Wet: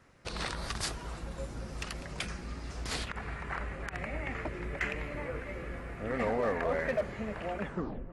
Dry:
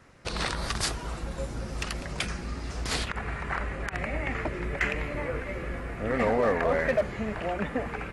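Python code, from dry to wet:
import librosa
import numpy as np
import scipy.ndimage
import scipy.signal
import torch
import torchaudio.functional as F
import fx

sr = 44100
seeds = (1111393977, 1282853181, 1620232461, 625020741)

y = fx.tape_stop_end(x, sr, length_s=0.48)
y = fx.echo_filtered(y, sr, ms=307, feedback_pct=69, hz=1900.0, wet_db=-18.5)
y = F.gain(torch.from_numpy(y), -6.0).numpy()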